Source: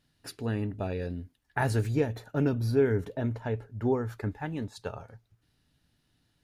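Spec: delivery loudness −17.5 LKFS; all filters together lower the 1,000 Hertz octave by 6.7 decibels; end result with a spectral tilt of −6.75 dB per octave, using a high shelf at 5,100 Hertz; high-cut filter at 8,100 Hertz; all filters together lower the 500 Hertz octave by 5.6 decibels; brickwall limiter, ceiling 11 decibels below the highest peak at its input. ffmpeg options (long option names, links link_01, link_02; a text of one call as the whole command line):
ffmpeg -i in.wav -af "lowpass=8100,equalizer=frequency=500:width_type=o:gain=-6,equalizer=frequency=1000:width_type=o:gain=-7,highshelf=frequency=5100:gain=8,volume=20dB,alimiter=limit=-8dB:level=0:latency=1" out.wav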